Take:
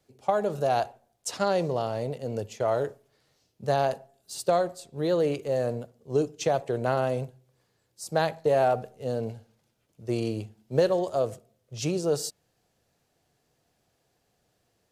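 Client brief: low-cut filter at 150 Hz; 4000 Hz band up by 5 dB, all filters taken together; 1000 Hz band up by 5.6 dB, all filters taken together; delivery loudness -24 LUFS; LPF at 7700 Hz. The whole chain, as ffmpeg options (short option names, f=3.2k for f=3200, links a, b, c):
-af "highpass=150,lowpass=7.7k,equalizer=f=1k:t=o:g=8.5,equalizer=f=4k:t=o:g=6,volume=1.5dB"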